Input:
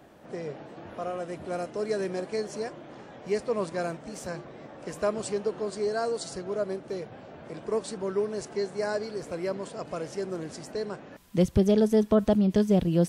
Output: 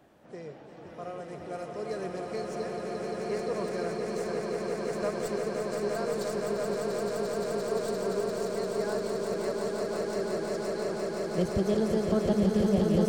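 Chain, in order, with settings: tracing distortion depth 0.029 ms; swelling echo 0.173 s, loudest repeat 8, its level -5 dB; gain -6.5 dB

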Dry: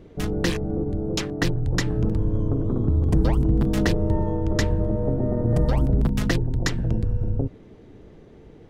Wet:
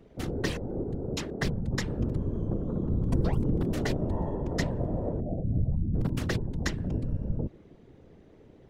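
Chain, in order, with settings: 5.2–5.95 spectral contrast raised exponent 2.6; whisperiser; gain -7 dB

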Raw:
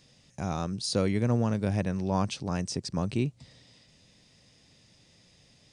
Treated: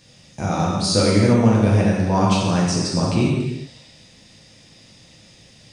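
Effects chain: non-linear reverb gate 0.44 s falling, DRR -5 dB; gain +6 dB

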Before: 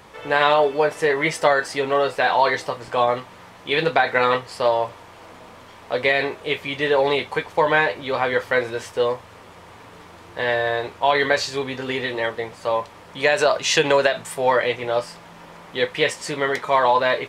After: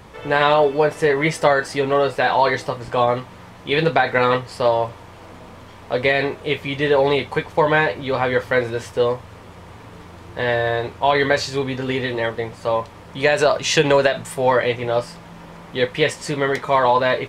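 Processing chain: low shelf 250 Hz +11 dB

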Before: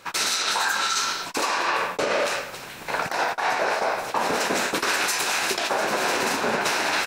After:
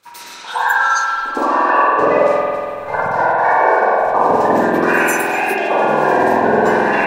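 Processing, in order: spectral noise reduction 20 dB; reverse echo 0.113 s -18 dB; spring tank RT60 2.3 s, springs 47 ms, chirp 75 ms, DRR -4 dB; gain +7 dB

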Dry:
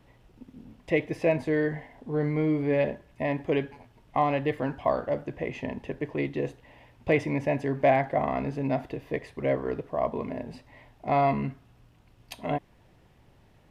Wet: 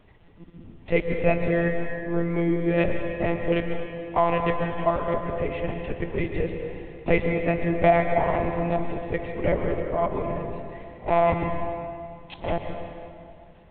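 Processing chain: monotone LPC vocoder at 8 kHz 170 Hz; plate-style reverb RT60 2.4 s, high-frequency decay 0.8×, pre-delay 0.105 s, DRR 4.5 dB; gain +3 dB

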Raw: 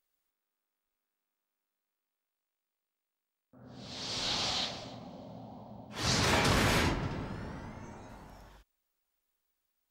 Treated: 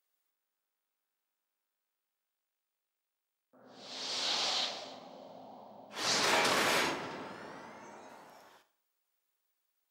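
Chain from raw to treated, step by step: HPF 370 Hz 12 dB/oct; Schroeder reverb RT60 0.59 s, combs from 27 ms, DRR 12 dB

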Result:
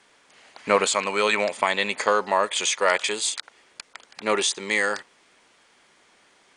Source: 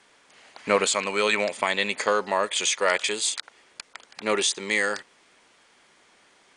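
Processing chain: dynamic EQ 940 Hz, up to +4 dB, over -38 dBFS, Q 1.1

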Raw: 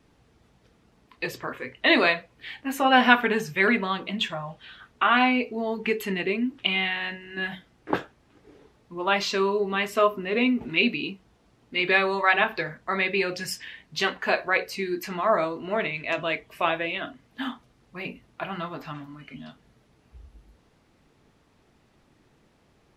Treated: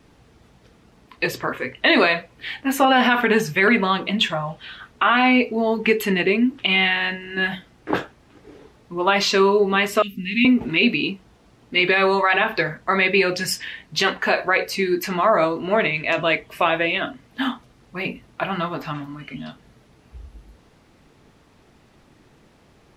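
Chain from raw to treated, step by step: 10.02–10.45 elliptic band-stop 240–2300 Hz, stop band 50 dB; limiter -14.5 dBFS, peak gain reduction 11 dB; gain +8 dB

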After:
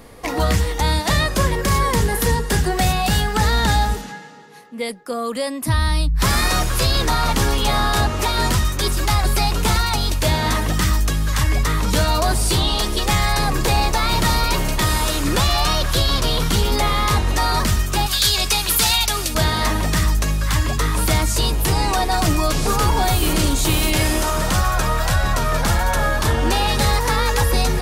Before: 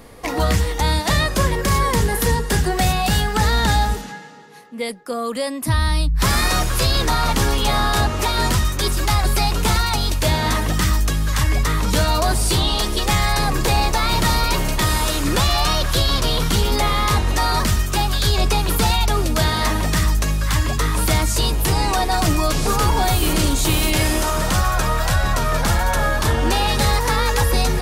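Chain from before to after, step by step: 18.06–19.35 tilt shelf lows -8 dB, about 1400 Hz; hard clip -6.5 dBFS, distortion -50 dB

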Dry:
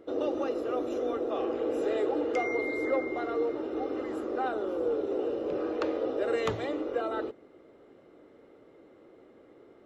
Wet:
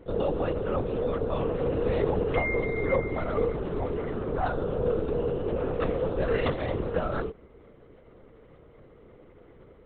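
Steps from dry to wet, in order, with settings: LPC vocoder at 8 kHz whisper; gain +3 dB

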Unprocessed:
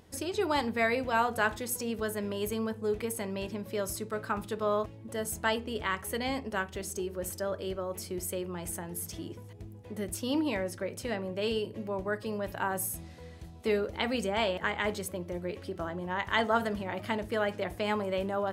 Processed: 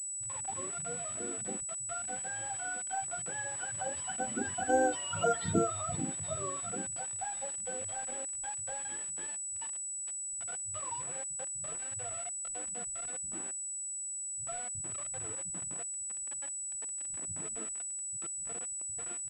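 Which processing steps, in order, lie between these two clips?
spectrum mirrored in octaves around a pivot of 570 Hz; Doppler pass-by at 4.88, 15 m/s, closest 4 m; spectral gate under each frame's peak -20 dB strong; tilt +2.5 dB/oct; in parallel at +2.5 dB: compressor 20:1, threshold -58 dBFS, peak gain reduction 26.5 dB; on the sum: transient shaper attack +6 dB, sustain 0 dB; bit-crush 9-bit; bands offset in time lows, highs 90 ms, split 160 Hz; speed mistake 25 fps video run at 24 fps; pulse-width modulation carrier 7900 Hz; gain +7 dB

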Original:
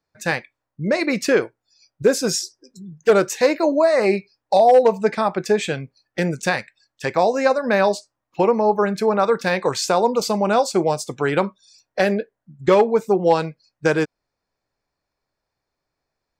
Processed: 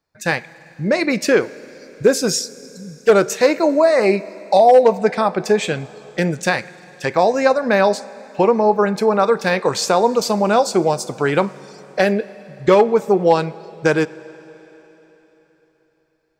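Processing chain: Schroeder reverb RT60 4 s, DRR 18.5 dB; gain +2.5 dB

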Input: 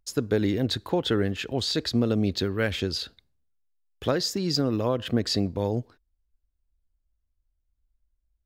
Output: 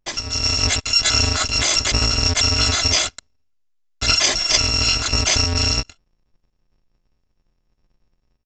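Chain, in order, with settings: FFT order left unsorted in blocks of 256 samples; in parallel at -10 dB: fuzz box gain 46 dB, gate -51 dBFS; on the sum: downsampling 16000 Hz; AGC gain up to 8 dB

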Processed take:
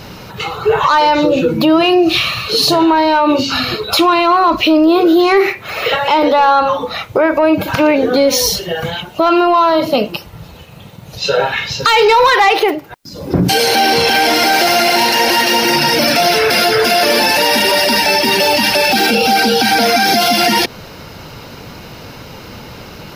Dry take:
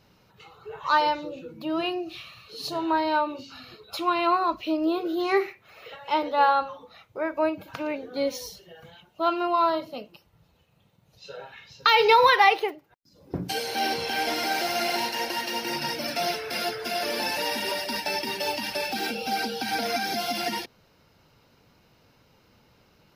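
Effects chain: in parallel at +3 dB: compressor, threshold -34 dBFS, peak gain reduction 19 dB; on the sum: soft clip -12 dBFS, distortion -18 dB; maximiser +23.5 dB; gain -3 dB

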